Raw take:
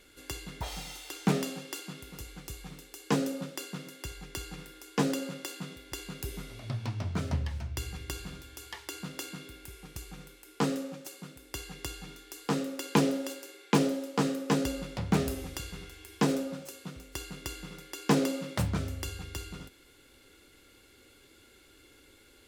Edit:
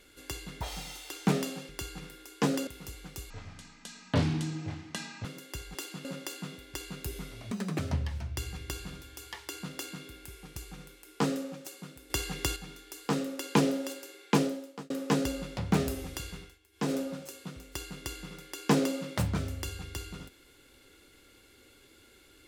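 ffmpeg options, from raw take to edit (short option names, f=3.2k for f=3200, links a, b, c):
-filter_complex "[0:a]asplit=14[a][b][c][d][e][f][g][h][i][j][k][l][m][n];[a]atrim=end=1.692[o];[b]atrim=start=4.248:end=5.232[p];[c]atrim=start=1.988:end=2.624[q];[d]atrim=start=2.62:end=3.75,asetpts=PTS-STARTPTS,asetrate=25578,aresample=44100[r];[e]atrim=start=3.746:end=4.252[s];[f]atrim=start=1.688:end=1.992[t];[g]atrim=start=5.228:end=6.694[u];[h]atrim=start=6.69:end=7.19,asetpts=PTS-STARTPTS,asetrate=78057,aresample=44100[v];[i]atrim=start=7.186:end=11.502[w];[j]atrim=start=11.498:end=11.962,asetpts=PTS-STARTPTS,volume=7.5dB[x];[k]atrim=start=11.958:end=14.3,asetpts=PTS-STARTPTS,afade=t=out:st=1.762:d=0.58[y];[l]atrim=start=14.3:end=15.99,asetpts=PTS-STARTPTS,afade=t=in:d=0.004:c=hsin,afade=t=out:st=1.43:d=0.26:silence=0.141254[z];[m]atrim=start=15.99:end=16.12,asetpts=PTS-STARTPTS,volume=-17dB[aa];[n]atrim=start=16.12,asetpts=PTS-STARTPTS,afade=t=in:d=0.26:silence=0.141254[ab];[o][p]acrossfade=d=0.004:c1=hsin:c2=hsin[ac];[ac][q]acrossfade=d=0.004:c1=hsin:c2=hsin[ad];[ad][r]acrossfade=d=0.004:c1=hsin:c2=hsin[ae];[ae][s]acrossfade=d=0.004:c1=hsin:c2=hsin[af];[af][t]acrossfade=d=0.004:c1=hsin:c2=hsin[ag];[ag][u]acrossfade=d=0.004:c1=hsin:c2=hsin[ah];[ah][v]acrossfade=d=0.004:c1=hsin:c2=hsin[ai];[ai][w]acrossfade=d=0.004:c1=hsin:c2=hsin[aj];[aj][x]acrossfade=d=0.004:c1=hsin:c2=hsin[ak];[y][z][aa][ab]concat=n=4:v=0:a=1[al];[ak][al]acrossfade=d=0.004:c1=hsin:c2=hsin"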